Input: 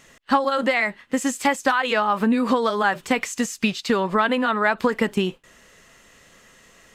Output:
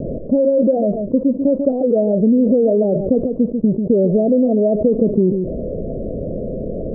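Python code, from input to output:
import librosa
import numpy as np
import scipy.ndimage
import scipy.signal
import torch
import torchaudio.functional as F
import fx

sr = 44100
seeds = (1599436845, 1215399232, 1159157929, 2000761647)

p1 = scipy.signal.sosfilt(scipy.signal.butter(16, 640.0, 'lowpass', fs=sr, output='sos'), x)
p2 = p1 + fx.echo_single(p1, sr, ms=142, db=-18.5, dry=0)
p3 = fx.env_flatten(p2, sr, amount_pct=70)
y = F.gain(torch.from_numpy(p3), 5.0).numpy()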